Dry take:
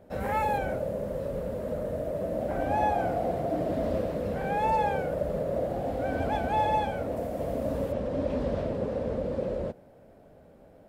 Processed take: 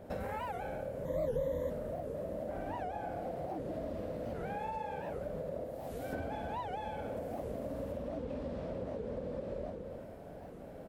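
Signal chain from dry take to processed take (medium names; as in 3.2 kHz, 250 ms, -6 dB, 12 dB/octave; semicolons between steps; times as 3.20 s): 5.64–6.13 s: pre-emphasis filter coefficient 0.8; reverse bouncing-ball echo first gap 50 ms, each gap 1.15×, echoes 5; compression 12:1, threshold -40 dBFS, peak gain reduction 21.5 dB; 1.05–1.70 s: rippled EQ curve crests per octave 1.1, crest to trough 17 dB; warped record 78 rpm, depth 250 cents; trim +3.5 dB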